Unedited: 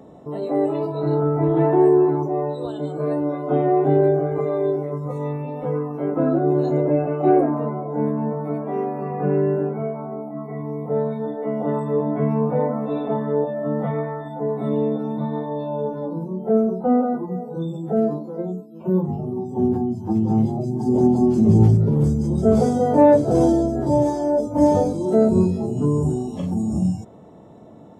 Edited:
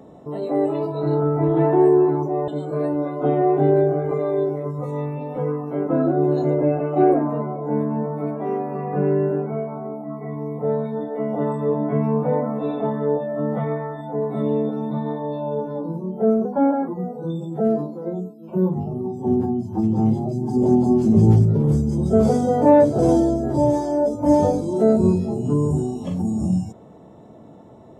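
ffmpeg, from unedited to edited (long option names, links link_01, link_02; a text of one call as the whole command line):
ffmpeg -i in.wav -filter_complex "[0:a]asplit=4[link_01][link_02][link_03][link_04];[link_01]atrim=end=2.482[link_05];[link_02]atrim=start=2.748:end=16.724[link_06];[link_03]atrim=start=16.72:end=17.2,asetpts=PTS-STARTPTS,asetrate=49392,aresample=44100[link_07];[link_04]atrim=start=17.196[link_08];[link_05][link_06]acrossfade=duration=0.004:curve1=hsin:curve2=hsin[link_09];[link_09][link_07]acrossfade=duration=0.004:curve1=hsin:curve2=hsin[link_10];[link_10][link_08]acrossfade=duration=0.004:curve1=hsin:curve2=hsin" out.wav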